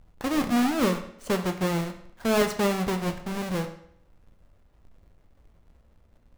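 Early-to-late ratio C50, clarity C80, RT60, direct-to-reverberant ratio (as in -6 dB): 10.5 dB, 13.0 dB, 0.70 s, 6.0 dB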